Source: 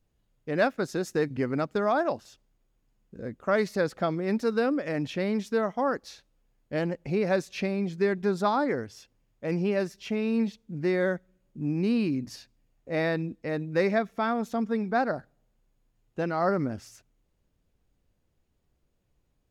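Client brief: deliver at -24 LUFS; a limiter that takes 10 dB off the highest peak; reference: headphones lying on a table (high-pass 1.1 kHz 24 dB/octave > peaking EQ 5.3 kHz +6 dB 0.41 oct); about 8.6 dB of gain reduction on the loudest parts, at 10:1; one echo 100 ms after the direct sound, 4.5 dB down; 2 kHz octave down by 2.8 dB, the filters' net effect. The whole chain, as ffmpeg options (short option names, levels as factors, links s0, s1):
-af "equalizer=f=2000:t=o:g=-3.5,acompressor=threshold=0.0355:ratio=10,alimiter=level_in=1.88:limit=0.0631:level=0:latency=1,volume=0.531,highpass=f=1100:w=0.5412,highpass=f=1100:w=1.3066,equalizer=f=5300:t=o:w=0.41:g=6,aecho=1:1:100:0.596,volume=14.1"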